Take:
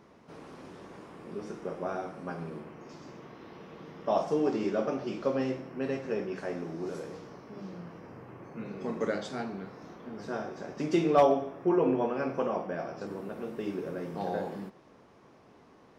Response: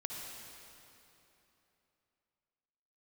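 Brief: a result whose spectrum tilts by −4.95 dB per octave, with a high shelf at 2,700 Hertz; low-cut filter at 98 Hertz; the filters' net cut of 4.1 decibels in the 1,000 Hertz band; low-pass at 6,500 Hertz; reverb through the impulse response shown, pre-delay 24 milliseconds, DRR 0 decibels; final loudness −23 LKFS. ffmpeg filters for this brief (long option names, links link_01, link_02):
-filter_complex "[0:a]highpass=98,lowpass=6500,equalizer=frequency=1000:width_type=o:gain=-5.5,highshelf=frequency=2700:gain=-5,asplit=2[link_01][link_02];[1:a]atrim=start_sample=2205,adelay=24[link_03];[link_02][link_03]afir=irnorm=-1:irlink=0,volume=0dB[link_04];[link_01][link_04]amix=inputs=2:normalize=0,volume=8dB"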